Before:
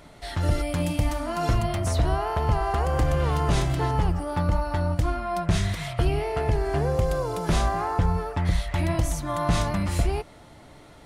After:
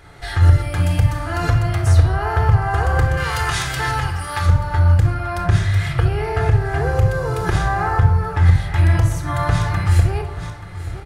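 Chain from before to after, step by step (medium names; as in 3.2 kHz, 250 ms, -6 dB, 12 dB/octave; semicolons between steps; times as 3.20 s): 3.17–4.46 s: tilt shelf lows -10 dB, about 1.1 kHz; delay 881 ms -17.5 dB; tremolo saw up 2 Hz, depth 50%; fifteen-band graphic EQ 100 Hz +8 dB, 250 Hz -6 dB, 1.6 kHz +9 dB; reverberation RT60 0.55 s, pre-delay 3 ms, DRR 5.5 dB; in parallel at -2 dB: compression, threshold -27 dBFS, peak gain reduction 18.5 dB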